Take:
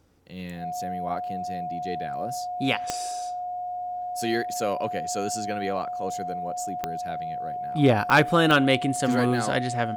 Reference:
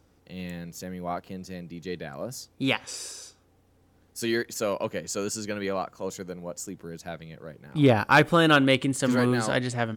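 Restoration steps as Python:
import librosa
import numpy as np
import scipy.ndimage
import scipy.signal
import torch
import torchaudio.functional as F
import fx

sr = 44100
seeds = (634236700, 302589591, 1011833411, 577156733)

y = fx.fix_declick_ar(x, sr, threshold=10.0)
y = fx.notch(y, sr, hz=720.0, q=30.0)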